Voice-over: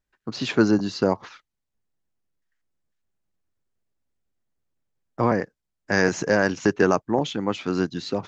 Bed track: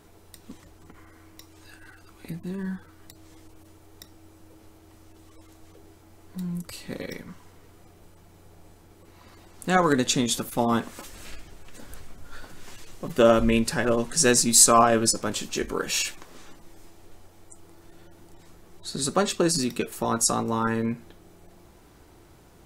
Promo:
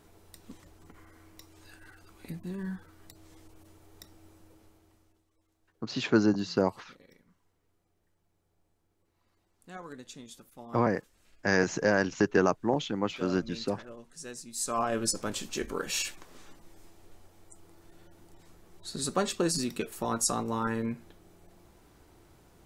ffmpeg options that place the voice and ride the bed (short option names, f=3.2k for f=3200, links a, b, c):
-filter_complex "[0:a]adelay=5550,volume=-5dB[a];[1:a]volume=13.5dB,afade=t=out:st=4.29:d=0.96:silence=0.112202,afade=t=in:st=14.54:d=0.67:silence=0.125893[b];[a][b]amix=inputs=2:normalize=0"